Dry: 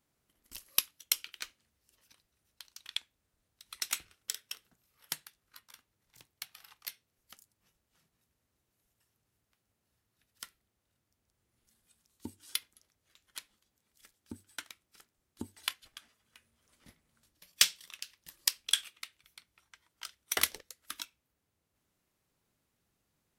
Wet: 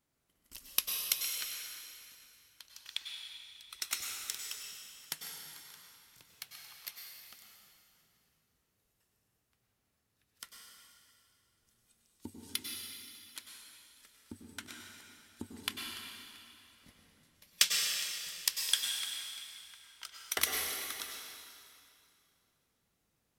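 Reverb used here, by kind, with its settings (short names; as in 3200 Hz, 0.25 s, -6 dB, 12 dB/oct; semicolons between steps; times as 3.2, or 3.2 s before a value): plate-style reverb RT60 2.5 s, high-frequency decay 0.95×, pre-delay 85 ms, DRR 0 dB; gain -2.5 dB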